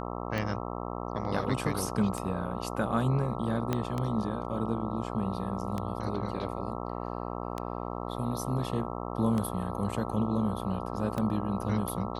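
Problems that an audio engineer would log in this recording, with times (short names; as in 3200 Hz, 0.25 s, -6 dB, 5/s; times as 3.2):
buzz 60 Hz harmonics 22 -36 dBFS
tick 33 1/3 rpm -19 dBFS
3.73 pop -15 dBFS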